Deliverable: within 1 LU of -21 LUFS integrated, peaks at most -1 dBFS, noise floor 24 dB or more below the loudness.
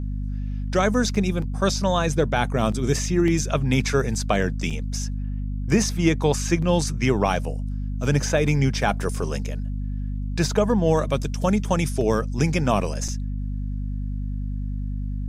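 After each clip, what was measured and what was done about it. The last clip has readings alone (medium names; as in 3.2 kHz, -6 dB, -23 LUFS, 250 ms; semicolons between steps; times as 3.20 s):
dropouts 3; longest dropout 5.0 ms; hum 50 Hz; highest harmonic 250 Hz; hum level -25 dBFS; loudness -24.0 LUFS; peak level -6.0 dBFS; loudness target -21.0 LUFS
-> interpolate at 1.15/4.70/13.08 s, 5 ms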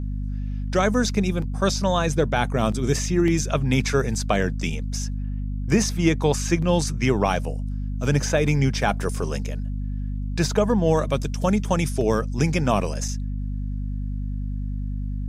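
dropouts 0; hum 50 Hz; highest harmonic 250 Hz; hum level -25 dBFS
-> de-hum 50 Hz, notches 5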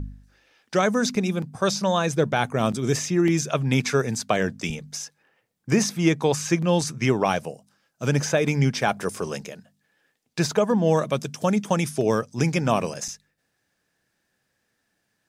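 hum not found; loudness -23.5 LUFS; peak level -7.0 dBFS; loudness target -21.0 LUFS
-> trim +2.5 dB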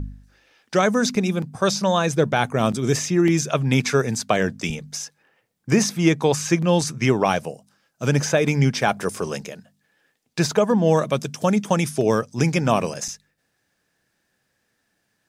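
loudness -21.0 LUFS; peak level -4.5 dBFS; noise floor -72 dBFS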